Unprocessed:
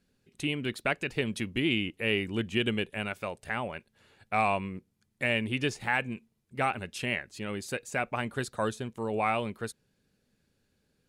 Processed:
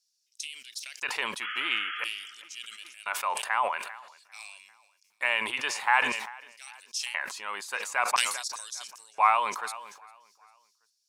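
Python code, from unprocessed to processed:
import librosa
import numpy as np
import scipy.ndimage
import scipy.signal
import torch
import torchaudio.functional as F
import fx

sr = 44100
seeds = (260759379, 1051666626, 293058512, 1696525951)

p1 = fx.spec_paint(x, sr, seeds[0], shape='noise', start_s=1.42, length_s=0.89, low_hz=1200.0, high_hz=3400.0, level_db=-39.0)
p2 = fx.filter_lfo_highpass(p1, sr, shape='square', hz=0.49, low_hz=1000.0, high_hz=5500.0, q=5.3)
p3 = p2 + fx.echo_feedback(p2, sr, ms=397, feedback_pct=45, wet_db=-24, dry=0)
y = fx.sustainer(p3, sr, db_per_s=58.0)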